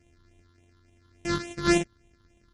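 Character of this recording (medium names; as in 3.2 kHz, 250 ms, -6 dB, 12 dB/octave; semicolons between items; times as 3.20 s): a buzz of ramps at a fixed pitch in blocks of 128 samples; phasing stages 6, 3.5 Hz, lowest notch 650–1300 Hz; MP3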